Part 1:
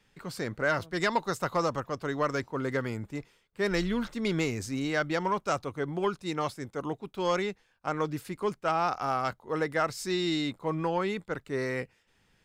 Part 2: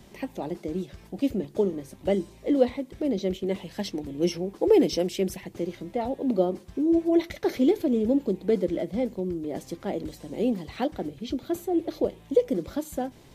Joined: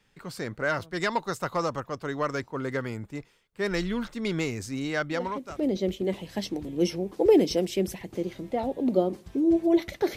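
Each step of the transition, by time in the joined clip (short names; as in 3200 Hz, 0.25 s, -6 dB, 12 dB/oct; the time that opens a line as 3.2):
part 1
5.37 switch to part 2 from 2.79 s, crossfade 0.56 s linear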